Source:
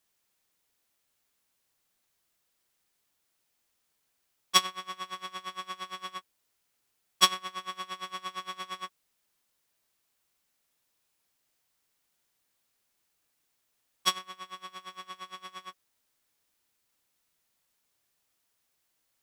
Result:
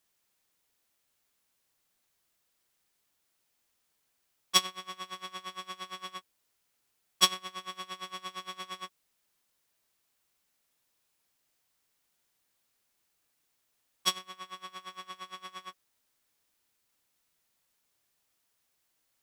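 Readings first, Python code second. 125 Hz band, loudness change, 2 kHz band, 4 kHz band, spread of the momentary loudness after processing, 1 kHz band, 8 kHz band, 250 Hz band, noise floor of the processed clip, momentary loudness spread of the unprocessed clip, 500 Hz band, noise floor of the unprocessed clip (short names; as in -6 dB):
0.0 dB, -2.0 dB, -3.0 dB, -1.0 dB, 18 LU, -4.0 dB, 0.0 dB, -0.5 dB, -77 dBFS, 19 LU, -1.0 dB, -77 dBFS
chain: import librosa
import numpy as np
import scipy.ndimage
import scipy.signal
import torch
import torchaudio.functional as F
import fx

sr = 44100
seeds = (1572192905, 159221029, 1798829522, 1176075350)

y = fx.dynamic_eq(x, sr, hz=1300.0, q=0.85, threshold_db=-42.0, ratio=4.0, max_db=-5)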